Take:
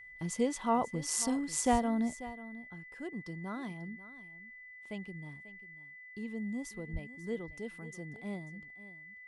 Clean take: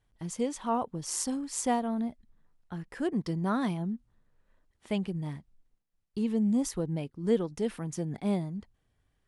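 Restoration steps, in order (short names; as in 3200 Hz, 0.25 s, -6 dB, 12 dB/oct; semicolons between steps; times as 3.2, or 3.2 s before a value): notch 2000 Hz, Q 30; 1.71–1.83 HPF 140 Hz 24 dB/oct; 6.92–7.04 HPF 140 Hz 24 dB/oct; inverse comb 0.541 s -16 dB; gain 0 dB, from 2.23 s +11.5 dB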